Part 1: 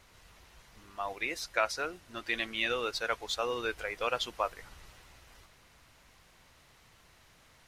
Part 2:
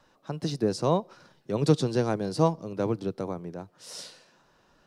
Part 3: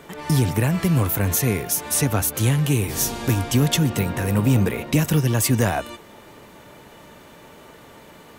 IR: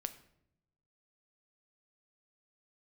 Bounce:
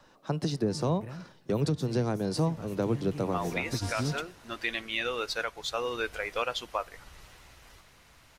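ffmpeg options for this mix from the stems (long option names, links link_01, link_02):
-filter_complex "[0:a]adelay=2350,volume=1dB,asplit=2[link_01][link_02];[link_02]volume=-10.5dB[link_03];[1:a]acrossover=split=240[link_04][link_05];[link_05]acompressor=threshold=-29dB:ratio=4[link_06];[link_04][link_06]amix=inputs=2:normalize=0,volume=2.5dB,asplit=3[link_07][link_08][link_09];[link_08]volume=-14dB[link_10];[2:a]lowpass=frequency=1900:poles=1,adelay=450,volume=-7.5dB,afade=type=in:start_time=3.31:duration=0.59:silence=0.251189[link_11];[link_09]apad=whole_len=389695[link_12];[link_11][link_12]sidechaingate=range=-33dB:threshold=-50dB:ratio=16:detection=peak[link_13];[3:a]atrim=start_sample=2205[link_14];[link_03][link_10]amix=inputs=2:normalize=0[link_15];[link_15][link_14]afir=irnorm=-1:irlink=0[link_16];[link_01][link_07][link_13][link_16]amix=inputs=4:normalize=0,alimiter=limit=-18dB:level=0:latency=1:release=481"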